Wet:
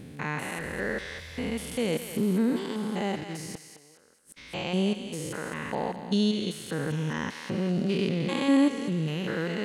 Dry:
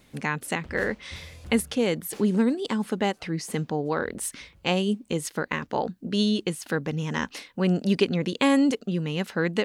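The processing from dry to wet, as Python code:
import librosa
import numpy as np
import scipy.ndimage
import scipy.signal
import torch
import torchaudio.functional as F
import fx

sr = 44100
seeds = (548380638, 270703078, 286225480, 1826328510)

p1 = fx.spec_steps(x, sr, hold_ms=200)
p2 = fx.gate_flip(p1, sr, shuts_db=-24.0, range_db=-31, at=(3.23, 4.36), fade=0.02)
y = p2 + fx.echo_thinned(p2, sr, ms=212, feedback_pct=40, hz=930.0, wet_db=-7.0, dry=0)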